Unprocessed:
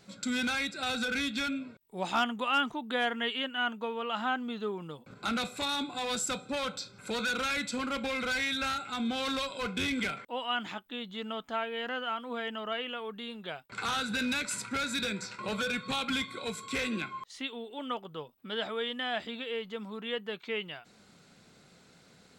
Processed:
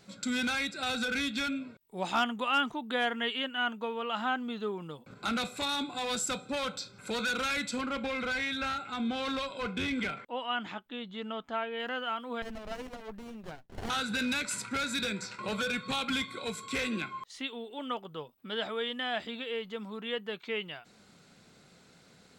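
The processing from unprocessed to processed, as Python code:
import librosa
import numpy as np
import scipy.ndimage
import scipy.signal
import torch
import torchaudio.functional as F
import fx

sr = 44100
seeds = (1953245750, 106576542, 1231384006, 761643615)

y = fx.lowpass(x, sr, hz=3200.0, slope=6, at=(7.81, 11.8))
y = fx.running_max(y, sr, window=33, at=(12.42, 13.9))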